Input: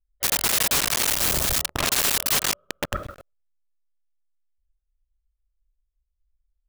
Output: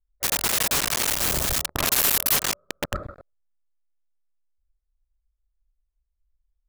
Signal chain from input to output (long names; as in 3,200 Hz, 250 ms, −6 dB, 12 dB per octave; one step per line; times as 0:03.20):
adaptive Wiener filter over 15 samples
0:01.75–0:02.36: parametric band 13,000 Hz +8.5 dB 0.49 octaves